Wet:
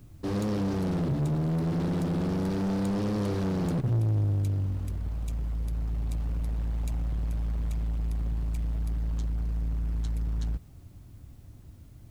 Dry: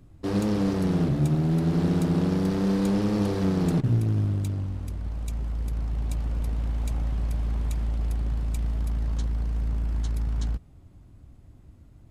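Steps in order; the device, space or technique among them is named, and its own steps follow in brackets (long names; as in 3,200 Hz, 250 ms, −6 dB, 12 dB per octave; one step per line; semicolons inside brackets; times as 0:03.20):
open-reel tape (soft clipping −26 dBFS, distortion −11 dB; parametric band 110 Hz +4 dB 0.86 octaves; white noise bed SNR 41 dB)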